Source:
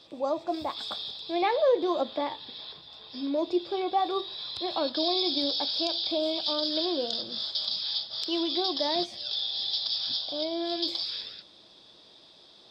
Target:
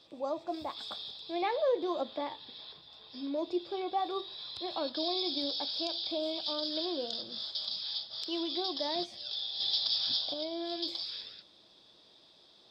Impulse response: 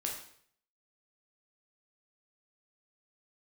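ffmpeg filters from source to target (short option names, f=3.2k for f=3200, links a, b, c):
-filter_complex "[0:a]asettb=1/sr,asplit=3[a][b][c];[a]atrim=end=9.604[d];[b]atrim=start=9.6:end=10.34,asetpts=PTS-STARTPTS,afade=t=in:d=0.004:c=qsin,afade=t=out:st=0.736:d=0.004:c=qsin,acontrast=31[e];[c]atrim=start=10.336[f];[d][e]acrossfade=d=0.004:c1=hsin:c2=qsin[g];[g][f]acrossfade=d=0.004:c1=qsin:c2=hsin,volume=-6dB"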